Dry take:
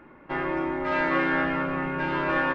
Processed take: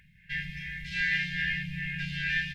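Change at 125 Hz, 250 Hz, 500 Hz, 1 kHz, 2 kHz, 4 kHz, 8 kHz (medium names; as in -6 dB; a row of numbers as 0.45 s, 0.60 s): -0.5 dB, -14.0 dB, under -40 dB, under -40 dB, -1.0 dB, +5.5 dB, no reading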